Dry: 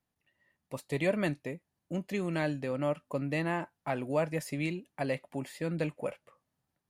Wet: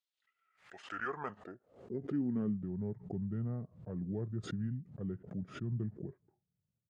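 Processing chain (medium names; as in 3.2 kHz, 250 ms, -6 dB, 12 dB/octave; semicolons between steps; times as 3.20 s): band-pass sweep 5.5 kHz -> 210 Hz, 0.06–2.69 s; pitch shift -6 st; swell ahead of each attack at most 130 dB/s; trim +2.5 dB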